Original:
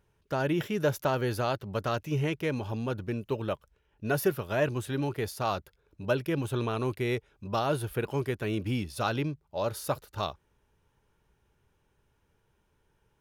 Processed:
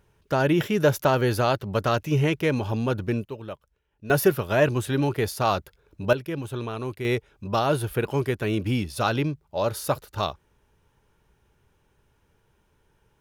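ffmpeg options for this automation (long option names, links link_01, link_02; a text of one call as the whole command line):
ffmpeg -i in.wav -af "asetnsamples=nb_out_samples=441:pad=0,asendcmd='3.25 volume volume -4.5dB;4.1 volume volume 7dB;6.13 volume volume -1dB;7.05 volume volume 5.5dB',volume=7dB" out.wav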